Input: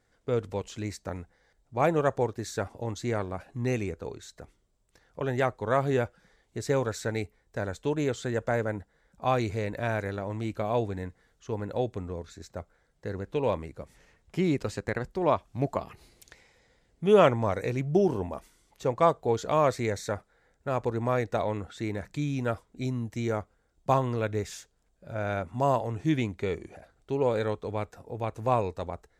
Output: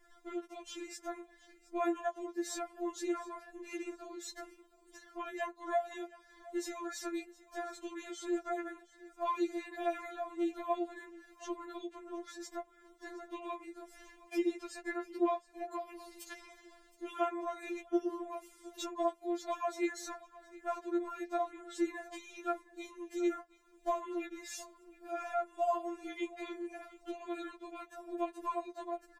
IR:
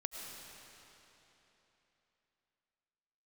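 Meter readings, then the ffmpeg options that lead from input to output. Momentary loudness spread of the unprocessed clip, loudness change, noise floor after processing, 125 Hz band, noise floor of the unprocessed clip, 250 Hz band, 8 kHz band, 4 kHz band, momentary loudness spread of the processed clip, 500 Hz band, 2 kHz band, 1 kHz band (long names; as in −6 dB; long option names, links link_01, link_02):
14 LU, −9.5 dB, −65 dBFS, below −40 dB, −70 dBFS, −6.5 dB, −3.5 dB, −7.0 dB, 14 LU, −11.0 dB, −9.0 dB, −7.5 dB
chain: -filter_complex "[0:a]equalizer=frequency=4600:width_type=o:width=0.77:gain=-2.5,acompressor=threshold=-45dB:ratio=2.5,asplit=2[link_01][link_02];[link_02]aecho=0:1:717|1434:0.1|0.03[link_03];[link_01][link_03]amix=inputs=2:normalize=0,afftfilt=real='re*4*eq(mod(b,16),0)':imag='im*4*eq(mod(b,16),0)':win_size=2048:overlap=0.75,volume=8dB"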